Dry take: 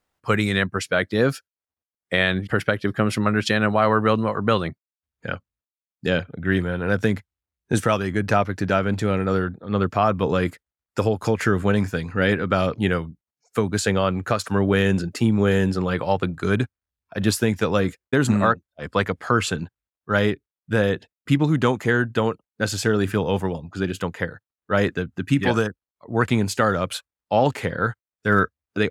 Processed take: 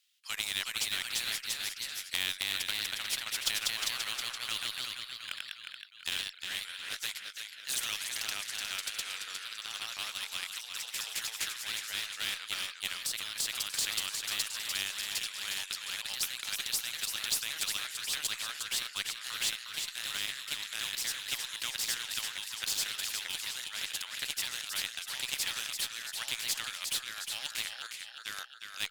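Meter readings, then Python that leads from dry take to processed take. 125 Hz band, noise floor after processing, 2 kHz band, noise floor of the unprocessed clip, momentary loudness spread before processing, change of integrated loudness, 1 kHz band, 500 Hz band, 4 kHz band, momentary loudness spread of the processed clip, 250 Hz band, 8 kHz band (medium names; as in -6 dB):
-36.5 dB, -49 dBFS, -11.5 dB, under -85 dBFS, 8 LU, -11.5 dB, -21.5 dB, -34.5 dB, +1.5 dB, 6 LU, -37.0 dB, +3.0 dB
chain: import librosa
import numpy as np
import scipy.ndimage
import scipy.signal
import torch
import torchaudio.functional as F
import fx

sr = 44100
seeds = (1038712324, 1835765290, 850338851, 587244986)

p1 = fx.ladder_highpass(x, sr, hz=2700.0, resonance_pct=45)
p2 = np.sign(p1) * np.maximum(np.abs(p1) - 10.0 ** (-42.5 / 20.0), 0.0)
p3 = p1 + (p2 * librosa.db_to_amplitude(-4.0))
p4 = fx.cheby_harmonics(p3, sr, harmonics=(4,), levels_db=(-37,), full_scale_db=-13.5)
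p5 = p4 + fx.echo_feedback(p4, sr, ms=358, feedback_pct=36, wet_db=-10.5, dry=0)
p6 = fx.echo_pitch(p5, sr, ms=389, semitones=1, count=2, db_per_echo=-3.0)
y = fx.spectral_comp(p6, sr, ratio=2.0)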